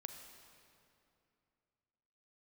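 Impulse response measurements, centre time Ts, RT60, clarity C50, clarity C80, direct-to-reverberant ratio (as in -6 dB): 46 ms, 2.7 s, 6.0 dB, 7.0 dB, 5.5 dB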